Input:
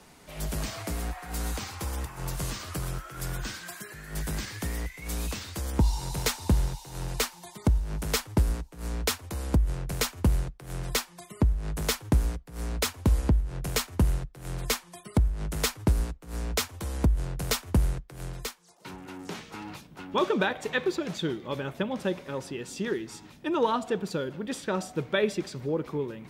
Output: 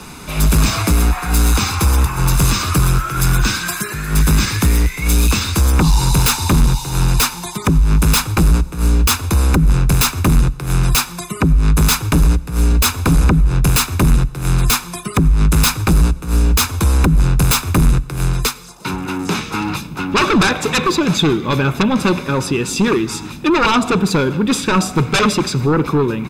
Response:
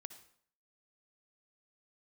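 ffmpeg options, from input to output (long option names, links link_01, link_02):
-filter_complex "[0:a]aeval=exprs='0.224*sin(PI/2*3.98*val(0)/0.224)':channel_layout=same,aecho=1:1:0.8:0.52,asplit=2[link_01][link_02];[1:a]atrim=start_sample=2205,asetrate=30870,aresample=44100[link_03];[link_02][link_03]afir=irnorm=-1:irlink=0,volume=-5.5dB[link_04];[link_01][link_04]amix=inputs=2:normalize=0"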